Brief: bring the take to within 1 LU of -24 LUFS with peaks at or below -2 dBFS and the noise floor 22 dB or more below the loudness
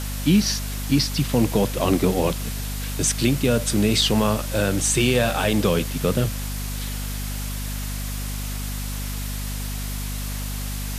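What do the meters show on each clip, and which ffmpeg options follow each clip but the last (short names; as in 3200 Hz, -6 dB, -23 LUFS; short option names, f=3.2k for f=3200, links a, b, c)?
hum 50 Hz; harmonics up to 250 Hz; hum level -26 dBFS; noise floor -29 dBFS; noise floor target -45 dBFS; loudness -23.0 LUFS; peak -6.5 dBFS; loudness target -24.0 LUFS
-> -af "bandreject=f=50:t=h:w=4,bandreject=f=100:t=h:w=4,bandreject=f=150:t=h:w=4,bandreject=f=200:t=h:w=4,bandreject=f=250:t=h:w=4"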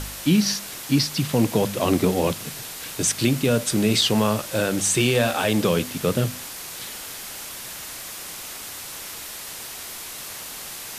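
hum none; noise floor -36 dBFS; noise floor target -46 dBFS
-> -af "afftdn=nr=10:nf=-36"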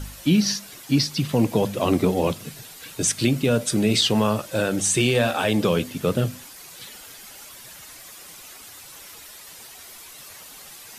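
noise floor -43 dBFS; noise floor target -44 dBFS
-> -af "afftdn=nr=6:nf=-43"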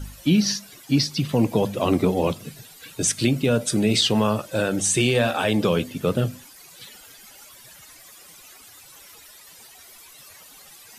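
noise floor -47 dBFS; loudness -22.0 LUFS; peak -7.0 dBFS; loudness target -24.0 LUFS
-> -af "volume=-2dB"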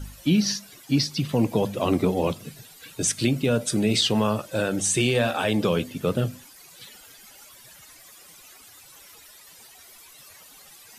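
loudness -24.0 LUFS; peak -9.0 dBFS; noise floor -49 dBFS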